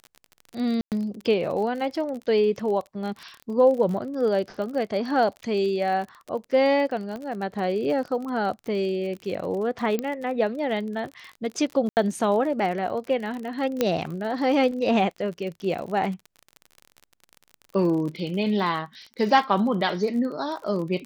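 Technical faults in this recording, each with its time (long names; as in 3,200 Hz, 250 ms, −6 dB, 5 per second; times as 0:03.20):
surface crackle 39 per second −32 dBFS
0:00.81–0:00.92: drop-out 108 ms
0:07.16: click −23 dBFS
0:09.99: click −14 dBFS
0:11.89–0:11.97: drop-out 79 ms
0:13.81: click −8 dBFS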